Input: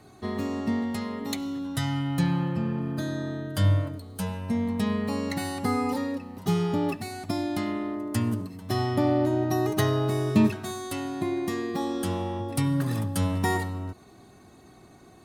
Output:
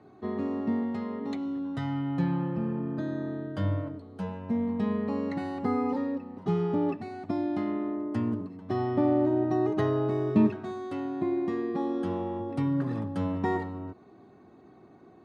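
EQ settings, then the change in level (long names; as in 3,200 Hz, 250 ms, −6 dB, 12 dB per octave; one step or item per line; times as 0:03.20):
resonant band-pass 460 Hz, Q 0.66
high-frequency loss of the air 54 metres
parametric band 630 Hz −3.5 dB 0.99 octaves
+2.0 dB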